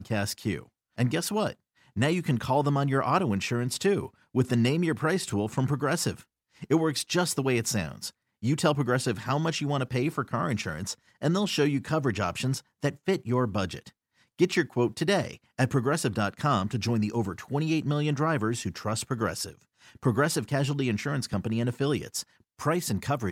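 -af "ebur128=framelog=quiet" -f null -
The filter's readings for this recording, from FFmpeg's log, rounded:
Integrated loudness:
  I:         -28.1 LUFS
  Threshold: -38.3 LUFS
Loudness range:
  LRA:         2.2 LU
  Threshold: -48.2 LUFS
  LRA low:   -29.1 LUFS
  LRA high:  -27.0 LUFS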